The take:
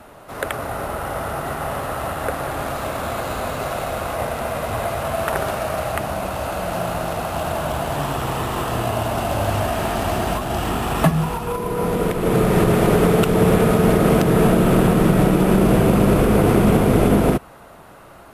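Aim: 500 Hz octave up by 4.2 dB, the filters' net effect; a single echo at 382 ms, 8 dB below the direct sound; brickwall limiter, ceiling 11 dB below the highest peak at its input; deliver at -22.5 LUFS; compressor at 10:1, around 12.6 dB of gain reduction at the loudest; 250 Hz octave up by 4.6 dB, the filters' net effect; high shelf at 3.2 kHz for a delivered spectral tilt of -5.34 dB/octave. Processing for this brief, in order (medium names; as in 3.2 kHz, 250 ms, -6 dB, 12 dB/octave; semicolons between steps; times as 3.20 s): peaking EQ 250 Hz +5.5 dB; peaking EQ 500 Hz +3.5 dB; treble shelf 3.2 kHz +6 dB; compression 10:1, threshold -20 dBFS; peak limiter -17.5 dBFS; delay 382 ms -8 dB; trim +3.5 dB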